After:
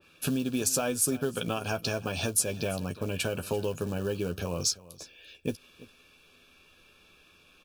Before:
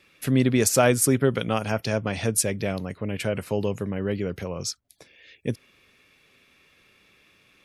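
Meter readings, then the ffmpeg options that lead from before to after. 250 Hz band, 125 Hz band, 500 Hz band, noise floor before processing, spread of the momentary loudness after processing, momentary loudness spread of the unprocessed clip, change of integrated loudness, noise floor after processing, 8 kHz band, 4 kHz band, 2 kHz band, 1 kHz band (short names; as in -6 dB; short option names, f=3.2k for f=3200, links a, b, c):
-7.0 dB, -8.0 dB, -7.0 dB, -61 dBFS, 10 LU, 14 LU, -5.5 dB, -60 dBFS, -2.5 dB, -1.0 dB, -6.0 dB, -7.0 dB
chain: -filter_complex "[0:a]asubboost=boost=3.5:cutoff=53,acrusher=bits=6:mode=log:mix=0:aa=0.000001,acompressor=threshold=-26dB:ratio=10,asuperstop=centerf=2000:order=8:qfactor=3.7,asplit=2[a][b];[b]adelay=12,volume=-7.5dB[c];[a][c]amix=inputs=2:normalize=0,asplit=2[d][e];[e]aecho=0:1:340:0.112[f];[d][f]amix=inputs=2:normalize=0,adynamicequalizer=threshold=0.00501:dfrequency=2300:dqfactor=0.7:tfrequency=2300:tqfactor=0.7:attack=5:release=100:ratio=0.375:range=2:mode=boostabove:tftype=highshelf"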